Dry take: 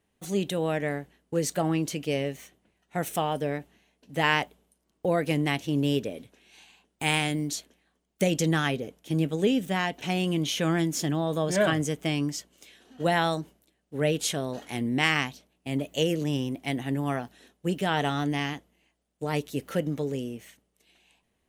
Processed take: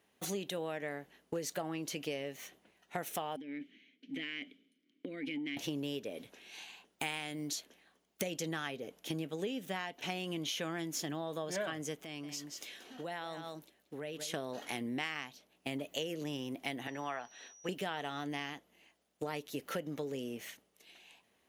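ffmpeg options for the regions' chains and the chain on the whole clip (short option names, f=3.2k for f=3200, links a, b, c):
-filter_complex "[0:a]asettb=1/sr,asplit=3[a][b][c];[a]atrim=end=3.364[d];[b]atrim=start=3.36:end=5.57,asetpts=PTS-STARTPTS,afade=t=in:d=0.004:c=qsin,afade=t=out:st=2.206:d=0.004:c=qsin,acompressor=threshold=-32dB:ratio=10:attack=3.2:release=140:knee=1:detection=peak,asplit=3[e][f][g];[e]bandpass=f=270:t=q:w=8,volume=0dB[h];[f]bandpass=f=2.29k:t=q:w=8,volume=-6dB[i];[g]bandpass=f=3.01k:t=q:w=8,volume=-9dB[j];[h][i][j]amix=inputs=3:normalize=0,aeval=exprs='0.0447*sin(PI/2*2*val(0)/0.0447)':c=same[k];[c]atrim=start=5.566[l];[d][k]acrossfade=d=0.004:c1=hsin:c2=qsin[m];[m][l]acrossfade=d=0.004:c1=qsin:c2=hsin,asettb=1/sr,asplit=3[n][o][p];[n]atrim=end=11.994[q];[o]atrim=start=11.99:end=14.34,asetpts=PTS-STARTPTS,afade=t=in:d=0.004:c=qsin,afade=t=out:st=2.346:d=0.004:c=qsin,aecho=1:1:180:0.188,atrim=end_sample=103635,acompressor=threshold=-41dB:ratio=6:attack=3.2:release=140:knee=1:detection=peak[r];[p]atrim=start=14.336[s];[q][r]acrossfade=d=0.004:c1=hsin:c2=qsin[t];[t][s]acrossfade=d=0.004:c1=qsin:c2=hsin,asettb=1/sr,asplit=3[u][v][w];[u]atrim=end=16.874[x];[v]atrim=start=16.87:end=17.69,asetpts=PTS-STARTPTS,afade=t=in:d=0.004:c=qsin,afade=t=out:st=0.816:d=0.004:c=qsin,acrossover=split=560 5300:gain=0.251 1 0.126[y][z][aa];[y][z][aa]amix=inputs=3:normalize=0,aeval=exprs='val(0)+0.001*sin(2*PI*5800*n/s)':c=same[ab];[w]atrim=start=17.686[ac];[x][ab]acrossfade=d=0.004:c1=hsin:c2=qsin[ad];[ad][ac]acrossfade=d=0.004:c1=qsin:c2=hsin,highpass=f=410:p=1,equalizer=f=8.3k:w=3.8:g=-7,acompressor=threshold=-41dB:ratio=6,volume=5dB"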